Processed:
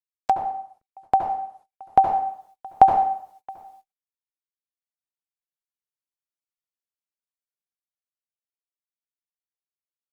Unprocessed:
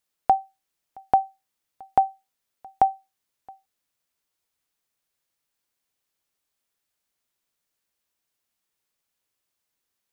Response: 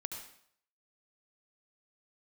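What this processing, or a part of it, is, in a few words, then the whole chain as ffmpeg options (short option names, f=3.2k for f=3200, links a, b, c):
speakerphone in a meeting room: -filter_complex "[1:a]atrim=start_sample=2205[a];[0:a][a]afir=irnorm=-1:irlink=0,dynaudnorm=f=210:g=21:m=14dB,agate=range=-34dB:threshold=-51dB:ratio=16:detection=peak,volume=1.5dB" -ar 48000 -c:a libopus -b:a 24k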